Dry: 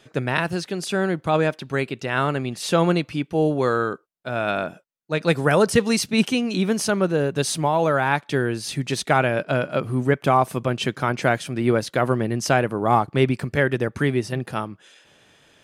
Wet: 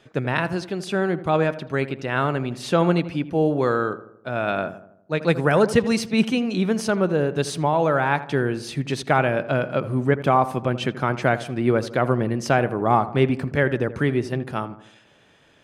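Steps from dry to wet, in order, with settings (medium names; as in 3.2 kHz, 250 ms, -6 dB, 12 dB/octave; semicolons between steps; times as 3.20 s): treble shelf 4.6 kHz -9.5 dB; filtered feedback delay 81 ms, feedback 53%, low-pass 1.7 kHz, level -13.5 dB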